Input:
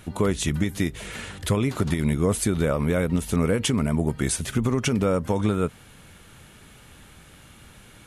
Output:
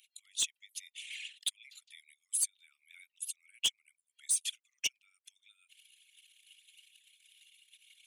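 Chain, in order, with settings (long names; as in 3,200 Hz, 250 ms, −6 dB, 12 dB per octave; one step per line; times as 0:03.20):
spectral envelope exaggerated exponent 2
Butterworth high-pass 2,500 Hz 48 dB per octave
in parallel at −2 dB: downward compressor, threshold −50 dBFS, peak gain reduction 25 dB
on the sum: soft clipping −21.5 dBFS, distortion −13 dB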